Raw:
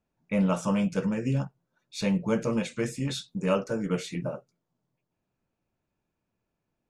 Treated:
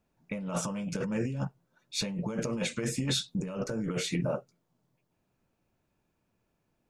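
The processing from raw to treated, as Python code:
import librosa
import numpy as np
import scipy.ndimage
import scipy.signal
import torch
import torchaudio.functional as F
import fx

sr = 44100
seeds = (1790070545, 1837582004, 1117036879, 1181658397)

y = fx.low_shelf(x, sr, hz=190.0, db=8.0, at=(3.4, 3.9))
y = fx.over_compress(y, sr, threshold_db=-32.0, ratio=-1.0)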